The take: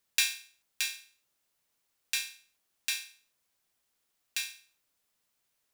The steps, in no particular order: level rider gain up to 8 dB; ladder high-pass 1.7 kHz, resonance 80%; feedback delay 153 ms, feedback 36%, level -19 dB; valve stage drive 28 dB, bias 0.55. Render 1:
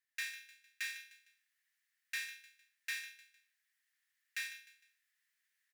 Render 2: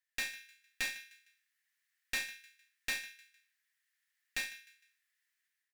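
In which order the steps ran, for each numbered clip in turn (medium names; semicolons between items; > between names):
feedback delay > level rider > valve stage > ladder high-pass; ladder high-pass > level rider > feedback delay > valve stage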